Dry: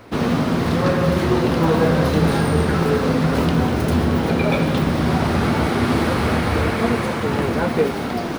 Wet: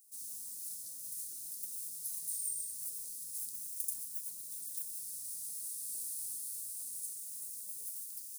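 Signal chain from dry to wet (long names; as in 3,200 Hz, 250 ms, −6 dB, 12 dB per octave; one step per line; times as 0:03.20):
inverse Chebyshev high-pass filter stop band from 2,800 Hz, stop band 60 dB
level +5 dB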